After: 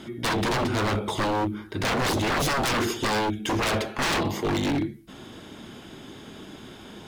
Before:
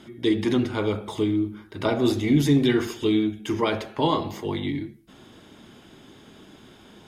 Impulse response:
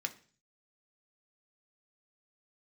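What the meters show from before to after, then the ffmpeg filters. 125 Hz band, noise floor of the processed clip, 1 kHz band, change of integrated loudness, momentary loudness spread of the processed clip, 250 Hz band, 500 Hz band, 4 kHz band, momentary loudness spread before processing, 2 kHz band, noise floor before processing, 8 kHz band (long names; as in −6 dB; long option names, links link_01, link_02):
−2.0 dB, −45 dBFS, +4.5 dB, −1.5 dB, 19 LU, −5.5 dB, −2.5 dB, +3.0 dB, 10 LU, +7.0 dB, −51 dBFS, +9.0 dB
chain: -af "aeval=exprs='0.0531*(abs(mod(val(0)/0.0531+3,4)-2)-1)':channel_layout=same,volume=6dB"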